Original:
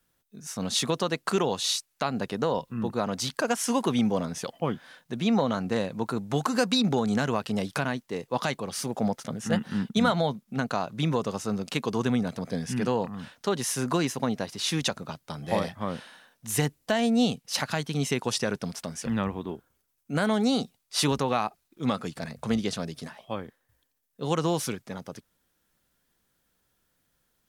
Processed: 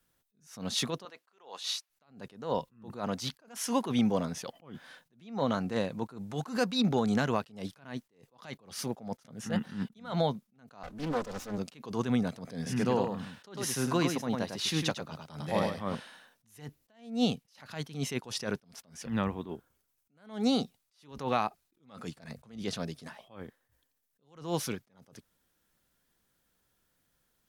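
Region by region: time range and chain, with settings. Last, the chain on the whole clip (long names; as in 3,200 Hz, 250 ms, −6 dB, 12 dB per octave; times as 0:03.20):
0:01.05–0:01.90: high-pass filter 620 Hz + high-shelf EQ 4,700 Hz −7.5 dB
0:10.83–0:11.58: lower of the sound and its delayed copy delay 4 ms + highs frequency-modulated by the lows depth 0.44 ms
0:12.56–0:15.95: high-pass filter 48 Hz + single-tap delay 102 ms −6.5 dB
whole clip: dynamic equaliser 8,200 Hz, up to −6 dB, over −51 dBFS, Q 2; level that may rise only so fast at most 140 dB per second; level −2 dB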